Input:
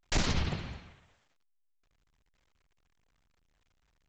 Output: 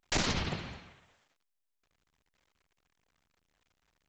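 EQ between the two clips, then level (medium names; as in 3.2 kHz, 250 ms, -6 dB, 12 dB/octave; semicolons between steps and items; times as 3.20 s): bass shelf 110 Hz -10.5 dB; +1.5 dB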